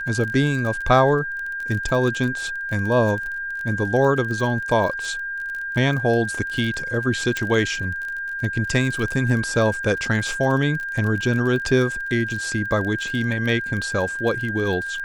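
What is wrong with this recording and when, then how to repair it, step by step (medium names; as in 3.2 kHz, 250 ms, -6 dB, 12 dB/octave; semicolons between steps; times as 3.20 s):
crackle 32 per s -27 dBFS
whine 1.6 kHz -26 dBFS
7.37 s: pop -11 dBFS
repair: de-click; band-stop 1.6 kHz, Q 30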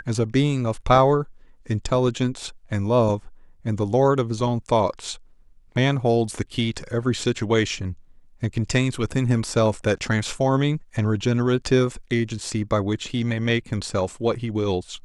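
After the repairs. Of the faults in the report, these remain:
7.37 s: pop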